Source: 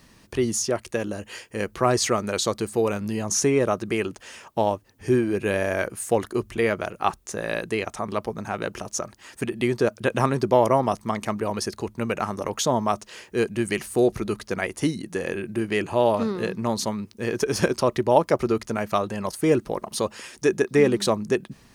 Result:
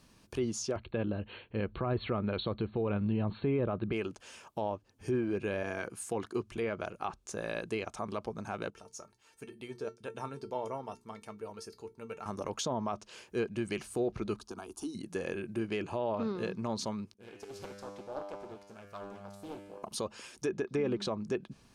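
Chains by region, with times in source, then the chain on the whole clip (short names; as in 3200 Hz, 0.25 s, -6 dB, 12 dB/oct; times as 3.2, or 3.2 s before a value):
0.76–3.93 brick-wall FIR low-pass 4400 Hz + low shelf 210 Hz +11 dB
5.63–6.52 HPF 100 Hz + notch 580 Hz, Q 5.1
8.7–12.26 notches 60/120/180/240/300/360/420 Hz + resonator 450 Hz, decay 0.15 s, mix 80%
14.39–14.95 compressor 2.5:1, threshold -27 dBFS + fixed phaser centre 540 Hz, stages 6
17.14–19.83 resonator 100 Hz, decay 1.3 s, mix 90% + Doppler distortion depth 0.9 ms
whole clip: notch 1900 Hz, Q 6.4; treble ducked by the level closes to 3000 Hz, closed at -17 dBFS; limiter -15 dBFS; gain -8 dB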